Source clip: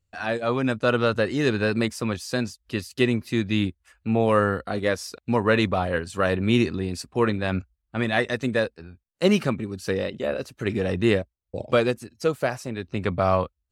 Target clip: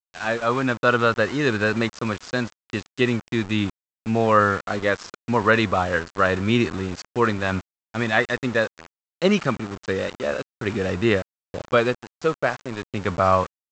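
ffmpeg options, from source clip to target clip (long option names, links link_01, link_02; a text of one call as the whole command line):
ffmpeg -i in.wav -af "aresample=16000,aeval=exprs='val(0)*gte(abs(val(0)),0.0224)':channel_layout=same,aresample=44100,adynamicequalizer=threshold=0.0141:dfrequency=1300:dqfactor=1.1:tfrequency=1300:tqfactor=1.1:attack=5:release=100:ratio=0.375:range=3.5:mode=boostabove:tftype=bell" out.wav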